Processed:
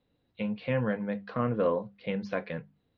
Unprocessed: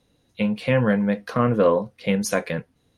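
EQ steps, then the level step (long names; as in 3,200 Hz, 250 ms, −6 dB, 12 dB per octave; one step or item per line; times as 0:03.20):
Butterworth low-pass 4,800 Hz 36 dB per octave
high-frequency loss of the air 140 metres
mains-hum notches 50/100/150/200 Hz
−8.5 dB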